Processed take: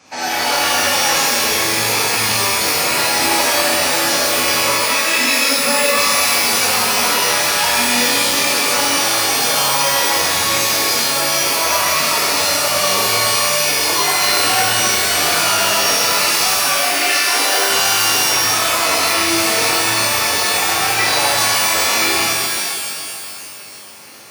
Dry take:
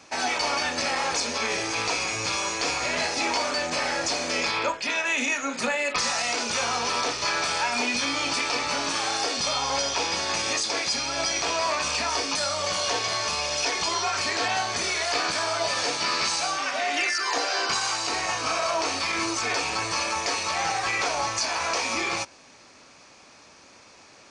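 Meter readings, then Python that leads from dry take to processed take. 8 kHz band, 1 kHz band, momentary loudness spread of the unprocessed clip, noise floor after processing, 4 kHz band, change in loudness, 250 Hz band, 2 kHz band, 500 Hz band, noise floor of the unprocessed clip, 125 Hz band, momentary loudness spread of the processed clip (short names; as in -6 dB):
+13.5 dB, +9.0 dB, 2 LU, -29 dBFS, +11.5 dB, +11.5 dB, +9.0 dB, +10.0 dB, +9.0 dB, -52 dBFS, +10.5 dB, 2 LU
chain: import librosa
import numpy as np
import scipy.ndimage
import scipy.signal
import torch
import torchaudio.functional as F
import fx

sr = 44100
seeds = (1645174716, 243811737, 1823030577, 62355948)

y = scipy.signal.sosfilt(scipy.signal.butter(2, 56.0, 'highpass', fs=sr, output='sos'), x)
y = fx.rev_shimmer(y, sr, seeds[0], rt60_s=2.3, semitones=12, shimmer_db=-2, drr_db=-8.5)
y = y * 10.0 ** (-1.0 / 20.0)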